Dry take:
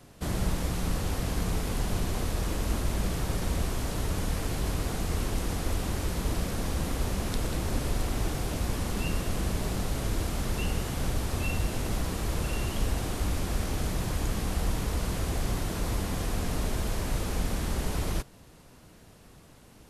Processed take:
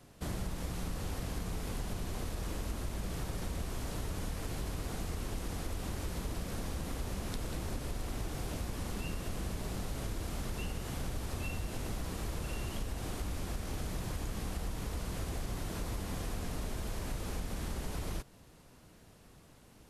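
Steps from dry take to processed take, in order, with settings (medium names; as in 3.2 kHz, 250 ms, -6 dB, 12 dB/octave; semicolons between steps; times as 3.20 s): compression, threshold -28 dBFS, peak gain reduction 7 dB; trim -5 dB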